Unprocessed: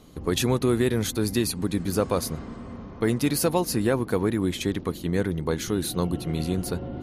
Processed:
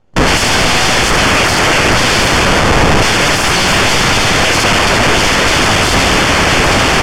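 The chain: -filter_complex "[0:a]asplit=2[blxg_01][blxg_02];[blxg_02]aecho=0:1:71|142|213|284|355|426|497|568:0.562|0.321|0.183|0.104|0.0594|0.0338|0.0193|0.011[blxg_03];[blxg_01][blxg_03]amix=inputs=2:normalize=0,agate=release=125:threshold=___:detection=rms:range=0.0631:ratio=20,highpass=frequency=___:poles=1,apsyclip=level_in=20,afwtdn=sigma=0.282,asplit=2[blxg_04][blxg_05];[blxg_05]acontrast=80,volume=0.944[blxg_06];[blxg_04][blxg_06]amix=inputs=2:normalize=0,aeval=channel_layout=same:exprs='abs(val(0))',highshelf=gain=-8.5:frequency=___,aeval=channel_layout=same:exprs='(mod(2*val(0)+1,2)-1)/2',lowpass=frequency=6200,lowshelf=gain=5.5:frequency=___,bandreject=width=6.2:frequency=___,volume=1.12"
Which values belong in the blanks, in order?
0.00562, 100, 2600, 160, 3900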